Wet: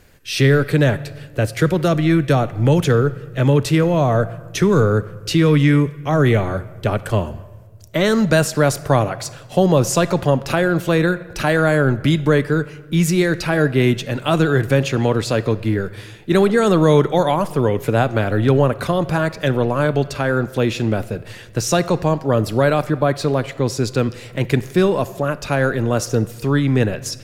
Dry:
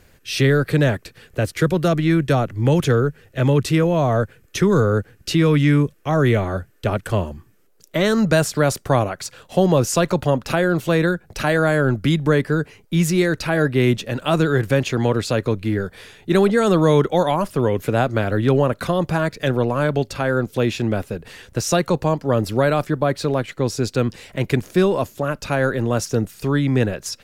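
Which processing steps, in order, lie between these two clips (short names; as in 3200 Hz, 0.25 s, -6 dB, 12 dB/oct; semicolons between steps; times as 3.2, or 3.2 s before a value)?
on a send: bell 240 Hz -12 dB 0.67 oct + reverb RT60 1.5 s, pre-delay 7 ms, DRR 14 dB; on the sum: gain +1.5 dB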